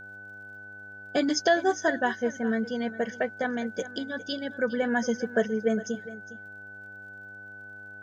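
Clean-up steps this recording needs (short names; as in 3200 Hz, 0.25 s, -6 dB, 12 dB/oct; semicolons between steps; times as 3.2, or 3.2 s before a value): de-click; de-hum 100.7 Hz, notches 8; notch 1500 Hz, Q 30; inverse comb 0.408 s -16.5 dB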